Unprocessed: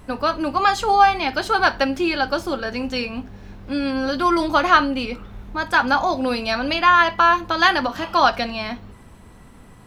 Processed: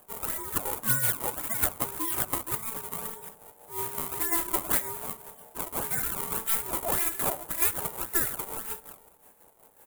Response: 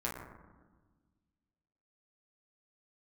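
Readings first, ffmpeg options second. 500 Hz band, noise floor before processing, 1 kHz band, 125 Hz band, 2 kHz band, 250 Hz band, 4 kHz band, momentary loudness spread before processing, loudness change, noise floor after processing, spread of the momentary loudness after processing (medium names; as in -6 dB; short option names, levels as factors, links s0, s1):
-15.0 dB, -45 dBFS, -19.5 dB, -4.5 dB, -17.5 dB, -17.5 dB, -17.0 dB, 13 LU, -9.0 dB, -58 dBFS, 12 LU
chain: -filter_complex "[0:a]lowshelf=f=87:g=-11,alimiter=limit=0.316:level=0:latency=1:release=233,aecho=1:1:70|296:0.282|0.211,acrusher=samples=26:mix=1:aa=0.000001:lfo=1:lforange=41.6:lforate=1.8,tremolo=f=5.5:d=0.63,aexciter=amount=7.6:drive=7.7:freq=7900,aeval=exprs='val(0)*sin(2*PI*670*n/s)':c=same,asplit=2[s0][s1];[1:a]atrim=start_sample=2205[s2];[s1][s2]afir=irnorm=-1:irlink=0,volume=0.075[s3];[s0][s3]amix=inputs=2:normalize=0,volume=0.335"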